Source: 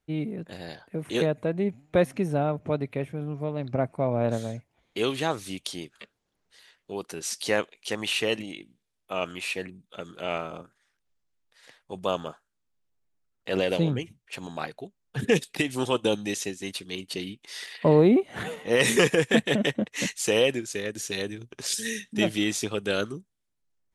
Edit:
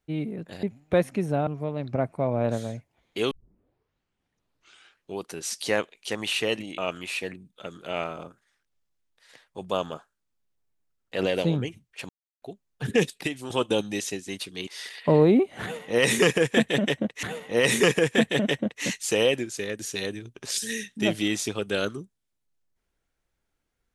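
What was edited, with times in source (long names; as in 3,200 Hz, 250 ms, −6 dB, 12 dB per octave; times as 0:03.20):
0:00.63–0:01.65: remove
0:02.49–0:03.27: remove
0:05.11: tape start 1.87 s
0:08.58–0:09.12: remove
0:14.43–0:14.76: silence
0:15.43–0:15.84: fade out, to −10.5 dB
0:17.01–0:17.44: remove
0:18.39–0:20.00: repeat, 2 plays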